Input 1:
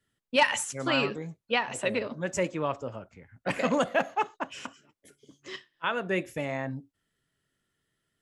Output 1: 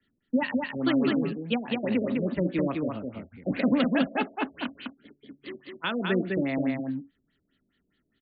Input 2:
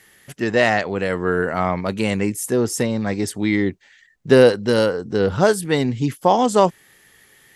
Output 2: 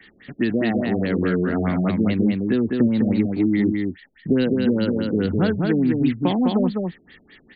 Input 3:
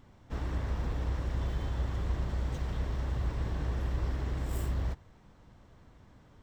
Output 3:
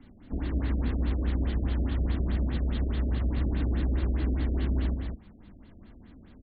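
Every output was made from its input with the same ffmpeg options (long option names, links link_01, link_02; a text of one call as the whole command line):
ffmpeg -i in.wav -filter_complex "[0:a]equalizer=frequency=125:width_type=o:width=1:gain=-8,equalizer=frequency=250:width_type=o:width=1:gain=8,equalizer=frequency=500:width_type=o:width=1:gain=-6,equalizer=frequency=1000:width_type=o:width=1:gain=-8,equalizer=frequency=4000:width_type=o:width=1:gain=3,acrossover=split=110|350|1300|4300[link_01][link_02][link_03][link_04][link_05];[link_01]acompressor=threshold=-35dB:ratio=4[link_06];[link_02]acompressor=threshold=-28dB:ratio=4[link_07];[link_03]acompressor=threshold=-36dB:ratio=4[link_08];[link_04]acompressor=threshold=-39dB:ratio=4[link_09];[link_05]acompressor=threshold=-42dB:ratio=4[link_10];[link_06][link_07][link_08][link_09][link_10]amix=inputs=5:normalize=0,acrusher=bits=7:mode=log:mix=0:aa=0.000001,aecho=1:1:205:0.668,afftfilt=real='re*lt(b*sr/1024,660*pow(4800/660,0.5+0.5*sin(2*PI*4.8*pts/sr)))':imag='im*lt(b*sr/1024,660*pow(4800/660,0.5+0.5*sin(2*PI*4.8*pts/sr)))':win_size=1024:overlap=0.75,volume=6dB" out.wav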